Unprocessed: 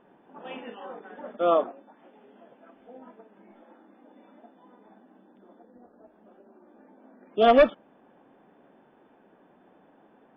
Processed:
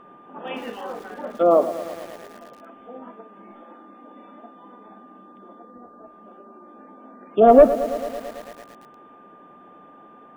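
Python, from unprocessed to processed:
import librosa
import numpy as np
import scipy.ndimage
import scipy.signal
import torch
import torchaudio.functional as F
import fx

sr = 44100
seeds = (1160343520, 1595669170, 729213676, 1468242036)

y = x + 10.0 ** (-55.0 / 20.0) * np.sin(2.0 * np.pi * 1200.0 * np.arange(len(x)) / sr)
y = fx.env_lowpass_down(y, sr, base_hz=800.0, full_db=-23.0)
y = fx.echo_crushed(y, sr, ms=111, feedback_pct=80, bits=7, wet_db=-13.5)
y = y * 10.0 ** (7.5 / 20.0)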